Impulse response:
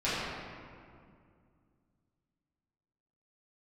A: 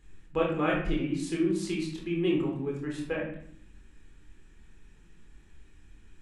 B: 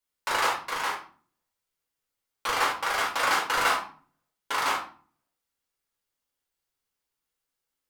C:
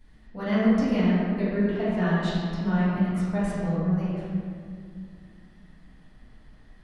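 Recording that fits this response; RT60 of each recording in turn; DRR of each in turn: C; 0.70 s, 0.45 s, 2.2 s; -2.0 dB, -4.0 dB, -13.0 dB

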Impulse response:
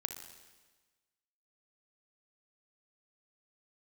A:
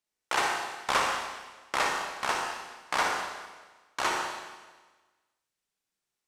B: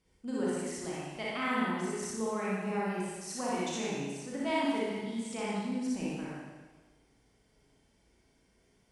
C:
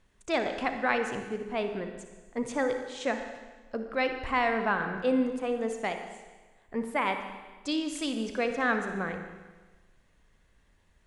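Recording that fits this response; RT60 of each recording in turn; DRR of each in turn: C; 1.3 s, 1.3 s, 1.3 s; -0.5 dB, -7.5 dB, 6.0 dB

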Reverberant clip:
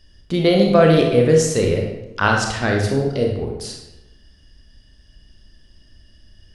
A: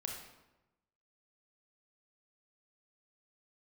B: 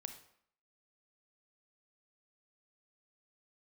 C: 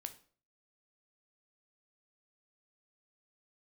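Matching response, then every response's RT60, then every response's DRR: A; 1.0 s, 0.65 s, 0.45 s; 0.5 dB, 7.0 dB, 8.0 dB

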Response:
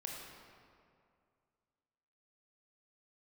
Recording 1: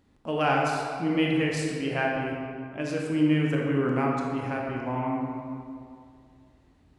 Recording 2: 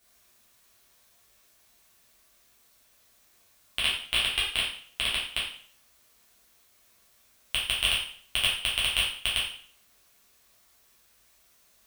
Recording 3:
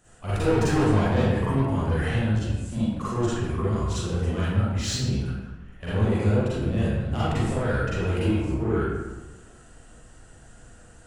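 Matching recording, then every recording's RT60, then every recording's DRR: 1; 2.3 s, 0.50 s, 1.2 s; -1.5 dB, -7.0 dB, -11.0 dB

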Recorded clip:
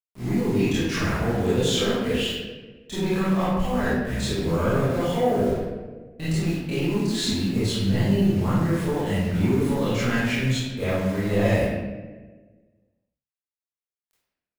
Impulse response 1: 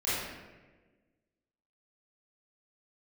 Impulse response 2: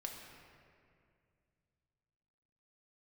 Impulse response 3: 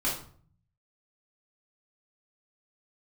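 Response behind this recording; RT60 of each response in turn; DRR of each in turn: 1; 1.3 s, 2.3 s, 0.50 s; -12.5 dB, 0.5 dB, -7.0 dB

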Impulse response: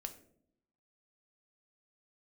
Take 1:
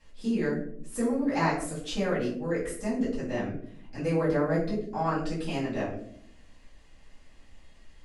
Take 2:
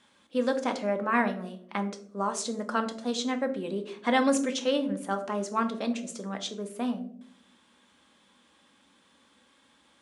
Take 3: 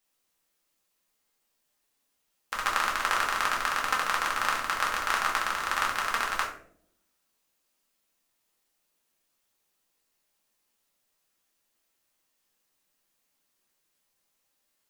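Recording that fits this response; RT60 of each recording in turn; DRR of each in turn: 2; 0.70 s, 0.70 s, 0.70 s; -12.0 dB, 6.0 dB, -3.0 dB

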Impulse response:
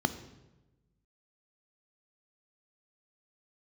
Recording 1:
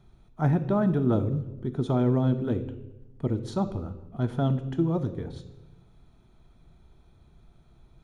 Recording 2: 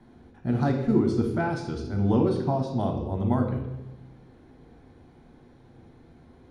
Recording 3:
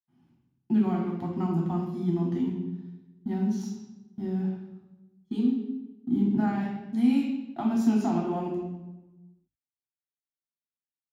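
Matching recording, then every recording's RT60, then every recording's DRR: 1; 1.1 s, 1.1 s, 1.1 s; 11.0 dB, 2.5 dB, -2.0 dB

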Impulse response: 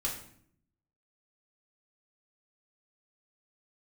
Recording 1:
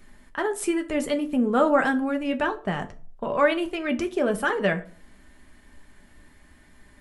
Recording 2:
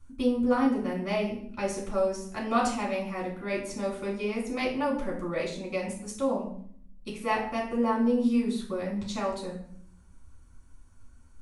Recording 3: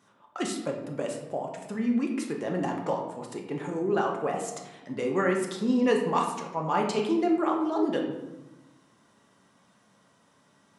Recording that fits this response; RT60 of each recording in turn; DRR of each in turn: 2; 0.40 s, 0.60 s, 1.0 s; 4.5 dB, -3.5 dB, 0.5 dB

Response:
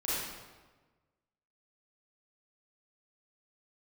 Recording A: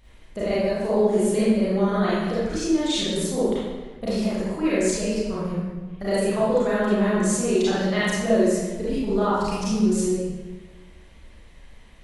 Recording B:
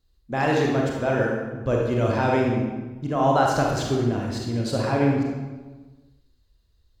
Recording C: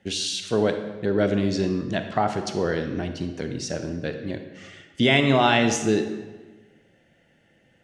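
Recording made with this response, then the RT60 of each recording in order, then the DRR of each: A; 1.3 s, 1.3 s, 1.3 s; -10.0 dB, -1.5 dB, 7.0 dB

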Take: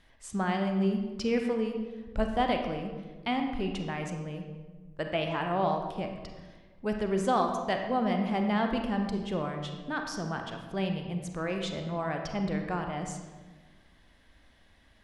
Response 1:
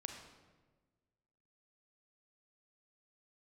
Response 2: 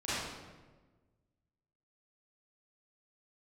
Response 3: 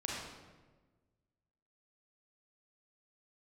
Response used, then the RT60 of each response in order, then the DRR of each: 1; 1.4 s, 1.3 s, 1.3 s; 3.5 dB, -13.5 dB, -4.0 dB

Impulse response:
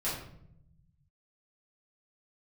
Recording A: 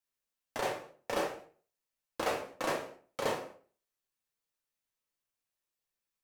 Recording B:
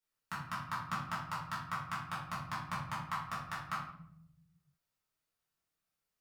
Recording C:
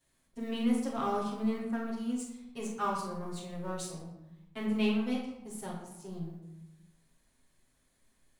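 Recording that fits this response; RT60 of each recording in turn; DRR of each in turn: B; 0.40 s, 0.70 s, 0.95 s; -0.5 dB, -10.0 dB, -9.0 dB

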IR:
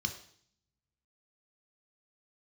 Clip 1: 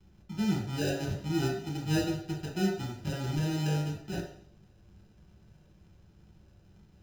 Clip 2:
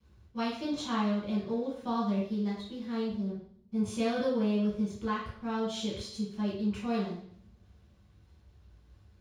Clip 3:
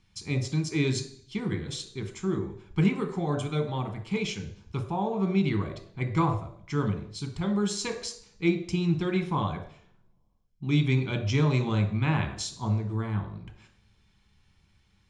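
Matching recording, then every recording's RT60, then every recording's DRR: 3; 0.60 s, 0.60 s, 0.60 s; -0.5 dB, -10.0 dB, 5.5 dB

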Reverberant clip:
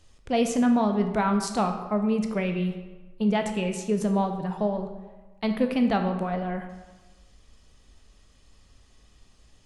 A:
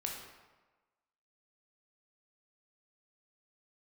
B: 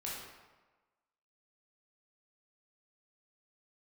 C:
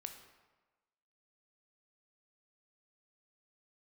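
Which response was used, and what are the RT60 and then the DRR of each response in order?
C; 1.3 s, 1.3 s, 1.2 s; -0.5 dB, -6.0 dB, 5.5 dB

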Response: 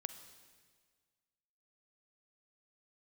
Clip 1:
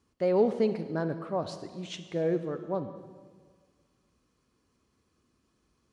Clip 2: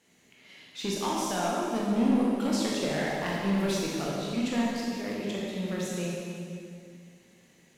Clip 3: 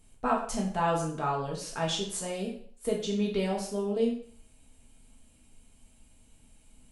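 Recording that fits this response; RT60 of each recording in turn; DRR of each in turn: 1; 1.7 s, 2.2 s, 0.50 s; 10.0 dB, -5.0 dB, -3.5 dB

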